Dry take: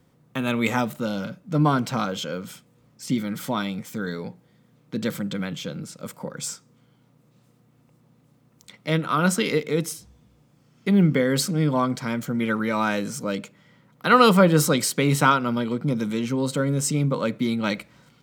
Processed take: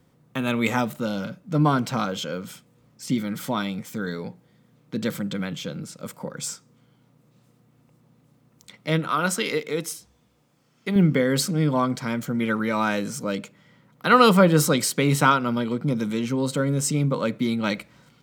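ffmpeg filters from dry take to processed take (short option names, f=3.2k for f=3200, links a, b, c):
-filter_complex "[0:a]asettb=1/sr,asplit=3[a][b][c];[a]atrim=end=9.104[d];[b]atrim=start=9.1:end=10.96,asetpts=PTS-STARTPTS,afade=t=in:d=0.004:c=qsin,afade=t=out:st=1.856:d=0.004:c=qsin,lowshelf=f=250:g=-11[e];[c]atrim=start=10.956[f];[d][e]acrossfade=d=0.004:c1=hsin:c2=qsin[g];[g][f]acrossfade=d=0.004:c1=qsin:c2=hsin"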